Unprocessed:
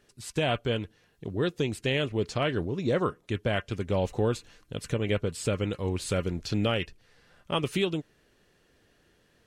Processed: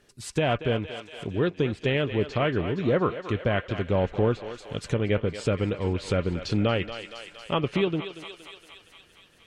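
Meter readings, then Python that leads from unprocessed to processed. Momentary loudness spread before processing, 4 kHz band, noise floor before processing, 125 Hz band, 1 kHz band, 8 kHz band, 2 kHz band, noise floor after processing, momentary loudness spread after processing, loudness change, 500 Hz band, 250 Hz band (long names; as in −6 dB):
8 LU, −0.5 dB, −66 dBFS, +3.0 dB, +3.5 dB, −3.5 dB, +2.5 dB, −57 dBFS, 12 LU, +2.5 dB, +3.5 dB, +3.0 dB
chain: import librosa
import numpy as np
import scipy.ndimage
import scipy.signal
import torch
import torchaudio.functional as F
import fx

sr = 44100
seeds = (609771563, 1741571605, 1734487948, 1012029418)

y = fx.echo_thinned(x, sr, ms=233, feedback_pct=70, hz=500.0, wet_db=-10)
y = fx.env_lowpass_down(y, sr, base_hz=2600.0, full_db=-25.5)
y = F.gain(torch.from_numpy(y), 3.0).numpy()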